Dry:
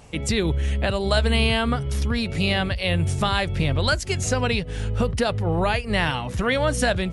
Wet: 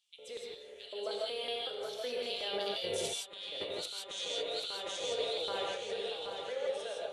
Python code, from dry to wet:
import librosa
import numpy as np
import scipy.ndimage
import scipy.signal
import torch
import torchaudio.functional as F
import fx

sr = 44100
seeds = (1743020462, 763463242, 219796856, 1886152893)

y = fx.doppler_pass(x, sr, speed_mps=15, closest_m=1.1, pass_at_s=3.18)
y = fx.comb_fb(y, sr, f0_hz=100.0, decay_s=1.0, harmonics='all', damping=0.0, mix_pct=70)
y = fx.filter_lfo_highpass(y, sr, shape='square', hz=2.7, low_hz=510.0, high_hz=3500.0, q=4.8)
y = fx.echo_feedback(y, sr, ms=778, feedback_pct=37, wet_db=-5.5)
y = fx.over_compress(y, sr, threshold_db=-52.0, ratio=-1.0)
y = fx.peak_eq(y, sr, hz=420.0, db=7.5, octaves=0.27)
y = fx.rev_gated(y, sr, seeds[0], gate_ms=190, shape='rising', drr_db=-2.0)
y = y * librosa.db_to_amplitude(6.5)